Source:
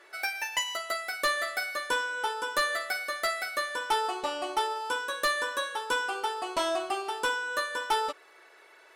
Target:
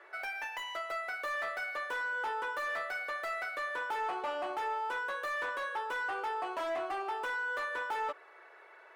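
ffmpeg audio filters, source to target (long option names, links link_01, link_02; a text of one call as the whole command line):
ffmpeg -i in.wav -filter_complex "[0:a]aeval=exprs='0.1*(cos(1*acos(clip(val(0)/0.1,-1,1)))-cos(1*PI/2))+0.0447*(cos(5*acos(clip(val(0)/0.1,-1,1)))-cos(5*PI/2))':channel_layout=same,acrossover=split=370 2300:gain=0.158 1 0.126[link_01][link_02][link_03];[link_01][link_02][link_03]amix=inputs=3:normalize=0,volume=-8dB" out.wav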